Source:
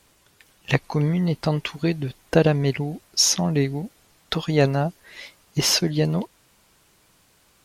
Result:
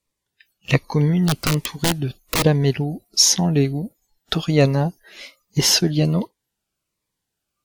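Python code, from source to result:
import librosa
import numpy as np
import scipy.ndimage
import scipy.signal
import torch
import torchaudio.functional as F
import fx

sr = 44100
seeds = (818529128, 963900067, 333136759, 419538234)

y = fx.overflow_wrap(x, sr, gain_db=15.5, at=(1.27, 2.43))
y = fx.noise_reduce_blind(y, sr, reduce_db=24)
y = fx.notch_cascade(y, sr, direction='falling', hz=1.3)
y = F.gain(torch.from_numpy(y), 4.0).numpy()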